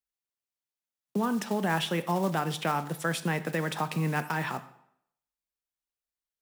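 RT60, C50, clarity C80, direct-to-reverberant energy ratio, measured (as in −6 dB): 0.70 s, 14.5 dB, 17.0 dB, 11.0 dB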